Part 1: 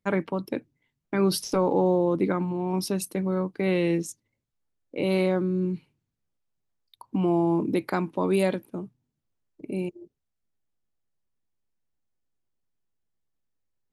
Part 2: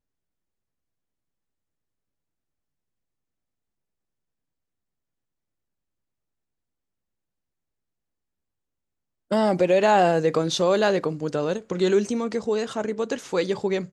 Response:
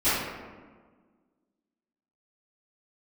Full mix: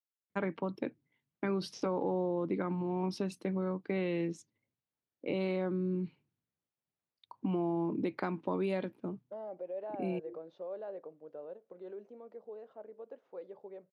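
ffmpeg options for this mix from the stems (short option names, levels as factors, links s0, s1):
-filter_complex "[0:a]adelay=300,volume=0.596[s0];[1:a]alimiter=limit=0.211:level=0:latency=1:release=24,bandpass=f=580:t=q:w=2.2:csg=0,volume=0.133[s1];[s0][s1]amix=inputs=2:normalize=0,highpass=110,lowpass=3900,acompressor=threshold=0.0316:ratio=4"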